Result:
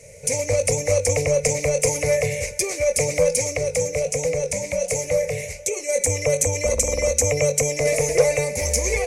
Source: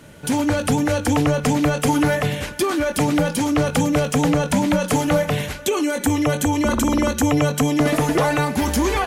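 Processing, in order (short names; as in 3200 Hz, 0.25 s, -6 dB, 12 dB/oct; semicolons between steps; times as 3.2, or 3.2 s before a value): EQ curve 110 Hz 0 dB, 310 Hz -23 dB, 500 Hz +11 dB, 790 Hz -11 dB, 1500 Hz -23 dB, 2200 Hz +8 dB, 3200 Hz -16 dB, 6100 Hz +11 dB, 9900 Hz +5 dB, 15000 Hz -9 dB; 3.57–5.89 flange 1.4 Hz, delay 5.3 ms, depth 6.8 ms, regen -82%; core saturation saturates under 300 Hz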